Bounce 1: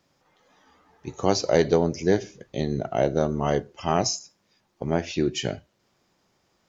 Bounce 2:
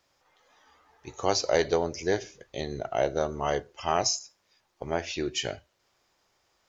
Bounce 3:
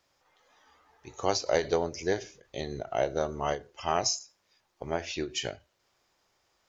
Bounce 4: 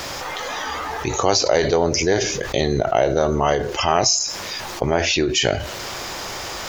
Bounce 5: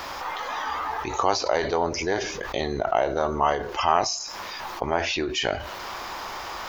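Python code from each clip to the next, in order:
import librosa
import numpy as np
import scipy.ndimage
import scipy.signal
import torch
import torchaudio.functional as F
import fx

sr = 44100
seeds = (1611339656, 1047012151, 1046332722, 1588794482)

y1 = fx.peak_eq(x, sr, hz=190.0, db=-13.5, octaves=1.8)
y2 = fx.end_taper(y1, sr, db_per_s=220.0)
y2 = y2 * librosa.db_to_amplitude(-1.5)
y3 = fx.env_flatten(y2, sr, amount_pct=70)
y3 = y3 * librosa.db_to_amplitude(7.0)
y4 = fx.graphic_eq(y3, sr, hz=(125, 500, 1000, 8000), db=(-8, -3, 8, -9))
y4 = y4 * librosa.db_to_amplitude(-6.0)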